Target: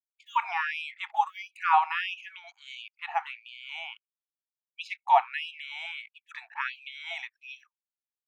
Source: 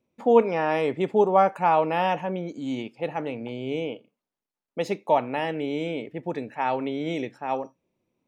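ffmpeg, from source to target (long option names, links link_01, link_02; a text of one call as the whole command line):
ffmpeg -i in.wav -filter_complex "[0:a]acrossover=split=3700[link_01][link_02];[link_02]acompressor=threshold=-57dB:ratio=4:attack=1:release=60[link_03];[link_01][link_03]amix=inputs=2:normalize=0,asubboost=boost=3:cutoff=70,anlmdn=0.0398,afftfilt=real='re*gte(b*sr/1024,660*pow(2400/660,0.5+0.5*sin(2*PI*1.5*pts/sr)))':imag='im*gte(b*sr/1024,660*pow(2400/660,0.5+0.5*sin(2*PI*1.5*pts/sr)))':win_size=1024:overlap=0.75,volume=4dB" out.wav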